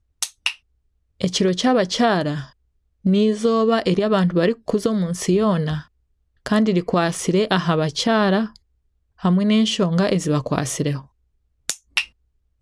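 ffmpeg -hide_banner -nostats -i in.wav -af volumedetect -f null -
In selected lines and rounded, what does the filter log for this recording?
mean_volume: -20.7 dB
max_volume: -2.0 dB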